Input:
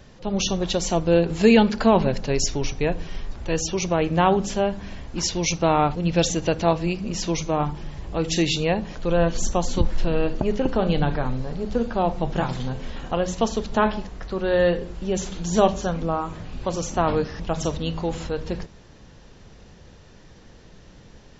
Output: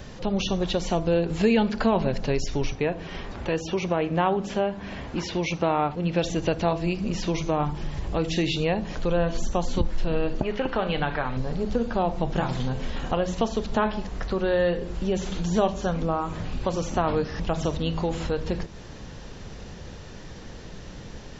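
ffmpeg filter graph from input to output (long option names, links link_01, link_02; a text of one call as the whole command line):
ffmpeg -i in.wav -filter_complex "[0:a]asettb=1/sr,asplit=3[link_01][link_02][link_03];[link_01]atrim=end=2.754[link_04];[link_02]atrim=start=2.75:end=6.24,asetpts=PTS-STARTPTS,afade=type=in:duration=0.004:curve=qsin,afade=type=out:start_time=3.486:duration=0.004:curve=qsin,highpass=frequency=130:poles=1,bass=frequency=250:gain=-1,treble=frequency=4000:gain=-9[link_05];[link_03]atrim=start=6.236[link_06];[link_04][link_05]acrossfade=duration=0.004:curve1=hsin:curve2=qsin[link_07];[link_07][link_06]acrossfade=duration=0.004:curve1=qsin:curve2=hsin,asettb=1/sr,asplit=3[link_08][link_09][link_10];[link_08]atrim=end=10.434[link_11];[link_09]atrim=start=10.43:end=11.37,asetpts=PTS-STARTPTS,afade=type=in:duration=0.004:curve=qsin,afade=type=out:start_time=0.936:duration=0.004:curve=qsin,lowpass=2600,tiltshelf=frequency=750:gain=-8[link_12];[link_10]atrim=start=11.366[link_13];[link_11][link_12]acrossfade=duration=0.004:curve1=hsin:curve2=qsin[link_14];[link_14][link_13]acrossfade=duration=0.004:curve1=qsin:curve2=hsin,acompressor=threshold=-36dB:ratio=2,bandreject=frequency=334.9:width_type=h:width=4,bandreject=frequency=669.8:width_type=h:width=4,bandreject=frequency=1004.7:width_type=h:width=4,acrossover=split=4200[link_15][link_16];[link_16]acompressor=threshold=-52dB:ratio=4:attack=1:release=60[link_17];[link_15][link_17]amix=inputs=2:normalize=0,volume=7.5dB" out.wav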